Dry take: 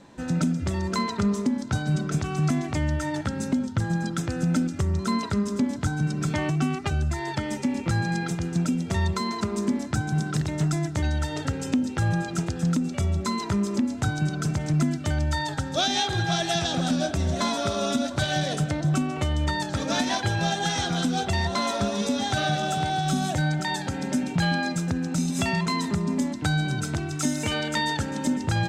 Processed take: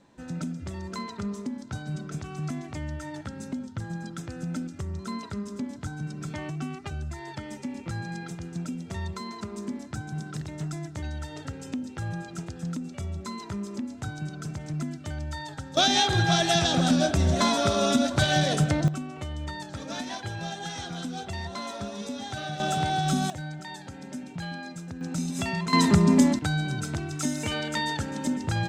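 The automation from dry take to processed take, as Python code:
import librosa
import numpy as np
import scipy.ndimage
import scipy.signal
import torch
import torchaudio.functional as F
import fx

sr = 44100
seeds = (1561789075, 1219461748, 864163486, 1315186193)

y = fx.gain(x, sr, db=fx.steps((0.0, -9.0), (15.77, 2.5), (18.88, -9.5), (22.6, -0.5), (23.3, -12.0), (25.01, -4.5), (25.73, 7.0), (26.39, -3.0)))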